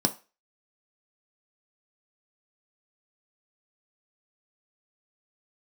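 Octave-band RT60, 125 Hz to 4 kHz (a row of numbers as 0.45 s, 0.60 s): 0.25 s, 0.25 s, 0.30 s, 0.30 s, 0.35 s, 0.30 s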